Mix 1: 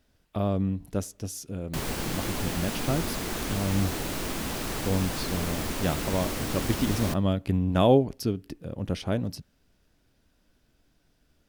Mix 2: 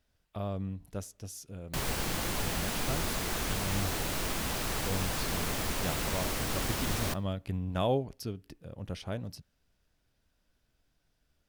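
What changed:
speech -6.5 dB; master: add peaking EQ 280 Hz -6 dB 1.4 oct

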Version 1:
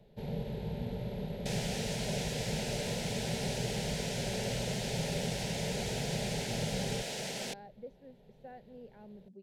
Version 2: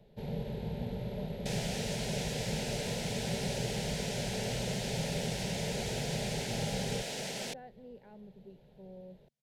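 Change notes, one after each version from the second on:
speech: entry -0.90 s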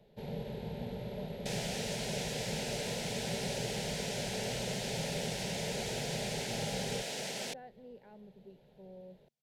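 master: add bass shelf 160 Hz -7.5 dB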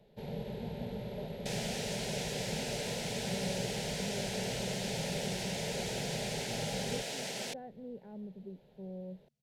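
speech: add tilt EQ -4.5 dB/octave

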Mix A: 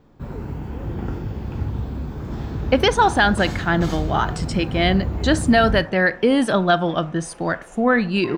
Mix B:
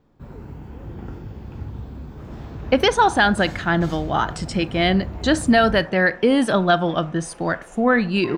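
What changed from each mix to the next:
first sound -7.0 dB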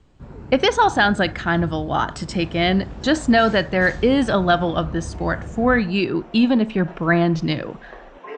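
speech: entry -2.20 s; master: add steep low-pass 8.3 kHz 96 dB/octave

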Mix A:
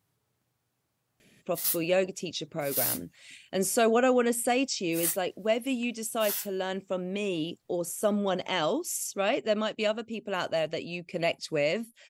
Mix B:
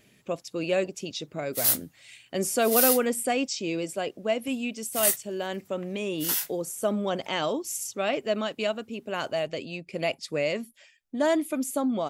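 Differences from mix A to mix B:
speech: entry -1.20 s; background +6.0 dB

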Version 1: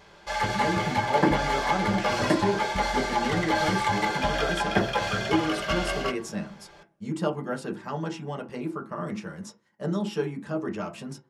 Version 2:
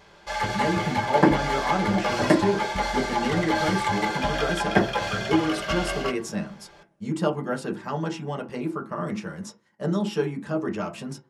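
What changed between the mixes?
speech +3.0 dB; second sound +4.5 dB

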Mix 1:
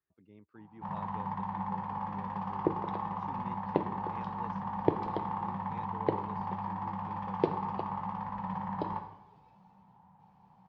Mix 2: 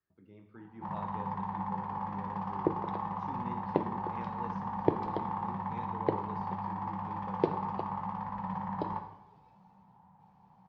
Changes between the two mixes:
speech: send on; master: add peaking EQ 2.9 kHz -2.5 dB 0.72 oct

